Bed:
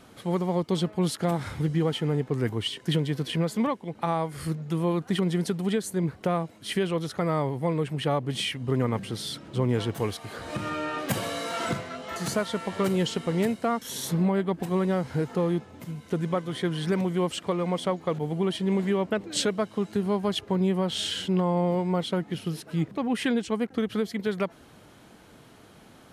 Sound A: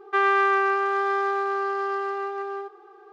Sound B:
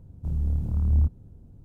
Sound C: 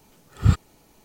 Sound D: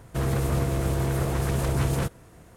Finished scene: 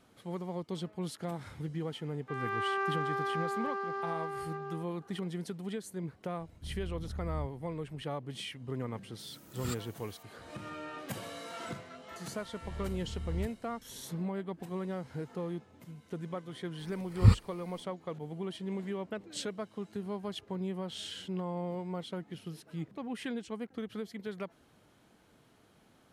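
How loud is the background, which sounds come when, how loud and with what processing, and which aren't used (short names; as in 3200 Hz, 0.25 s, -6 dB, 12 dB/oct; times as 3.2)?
bed -12 dB
2.15 add A -10 dB + opening faded in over 0.65 s
6.39 add B -11 dB + compressor 2:1, threshold -28 dBFS
9.19 add C -11.5 dB + RIAA curve recording
12.39 add B -15.5 dB
16.79 add C -5 dB + ripple EQ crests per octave 0.91, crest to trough 10 dB
not used: D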